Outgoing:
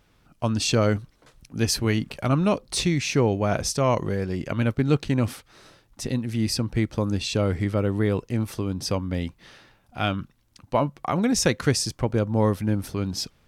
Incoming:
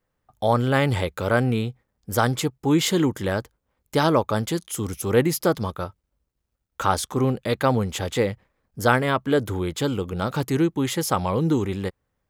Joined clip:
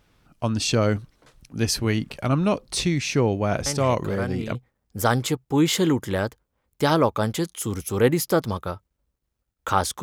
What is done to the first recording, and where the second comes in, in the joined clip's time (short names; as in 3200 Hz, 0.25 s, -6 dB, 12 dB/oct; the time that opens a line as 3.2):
outgoing
3.66 add incoming from 0.79 s 0.89 s -9.5 dB
4.55 switch to incoming from 1.68 s